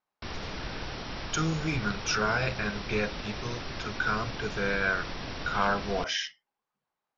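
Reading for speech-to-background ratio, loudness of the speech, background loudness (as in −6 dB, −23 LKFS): 7.0 dB, −31.0 LKFS, −38.0 LKFS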